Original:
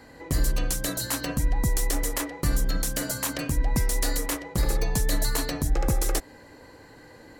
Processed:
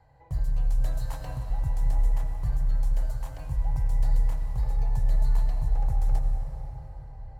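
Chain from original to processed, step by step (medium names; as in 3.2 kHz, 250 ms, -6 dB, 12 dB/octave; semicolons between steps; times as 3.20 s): FFT filter 140 Hz 0 dB, 220 Hz -27 dB, 400 Hz -19 dB, 820 Hz -3 dB, 1.2 kHz -15 dB, 9.8 kHz -24 dB; 0.80–1.49 s: compressor with a negative ratio -29 dBFS; reverberation RT60 5.5 s, pre-delay 76 ms, DRR 3.5 dB; trim -3 dB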